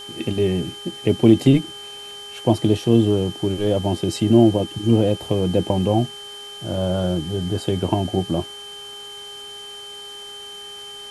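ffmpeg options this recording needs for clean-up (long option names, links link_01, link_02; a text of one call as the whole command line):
ffmpeg -i in.wav -af "bandreject=frequency=408.4:width_type=h:width=4,bandreject=frequency=816.8:width_type=h:width=4,bandreject=frequency=1225.2:width_type=h:width=4,bandreject=frequency=1633.6:width_type=h:width=4,bandreject=frequency=3100:width=30,afwtdn=0.0063" out.wav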